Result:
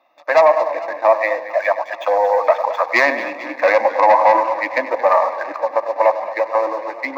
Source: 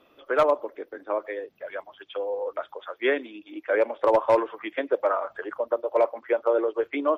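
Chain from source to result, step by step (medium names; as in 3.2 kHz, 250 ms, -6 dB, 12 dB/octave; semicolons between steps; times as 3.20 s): self-modulated delay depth 0.09 ms; Doppler pass-by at 2.41 s, 19 m/s, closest 22 m; tape echo 100 ms, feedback 63%, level -12 dB, low-pass 1.3 kHz; waveshaping leveller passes 2; high-pass 580 Hz 12 dB/octave; treble shelf 2.3 kHz -12 dB; static phaser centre 2.1 kHz, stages 8; loudness maximiser +21.5 dB; modulated delay 226 ms, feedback 64%, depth 88 cents, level -15 dB; trim -1.5 dB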